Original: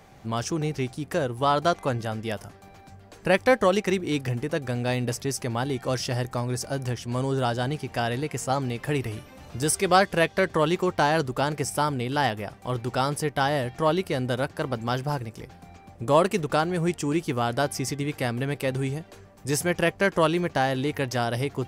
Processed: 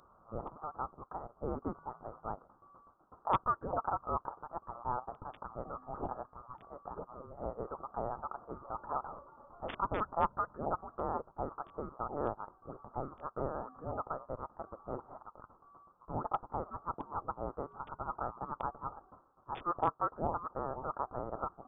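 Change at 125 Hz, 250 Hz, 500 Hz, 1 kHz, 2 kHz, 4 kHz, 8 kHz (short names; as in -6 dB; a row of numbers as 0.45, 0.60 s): -20.0 dB, -18.5 dB, -16.0 dB, -8.5 dB, -24.0 dB, -29.5 dB, under -40 dB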